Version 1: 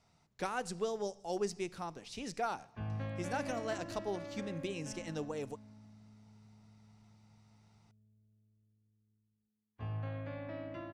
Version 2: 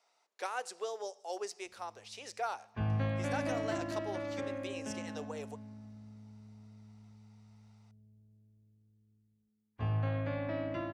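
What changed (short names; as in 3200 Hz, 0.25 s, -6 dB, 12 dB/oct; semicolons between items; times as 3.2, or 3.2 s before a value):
speech: add HPF 450 Hz 24 dB/oct; background +7.0 dB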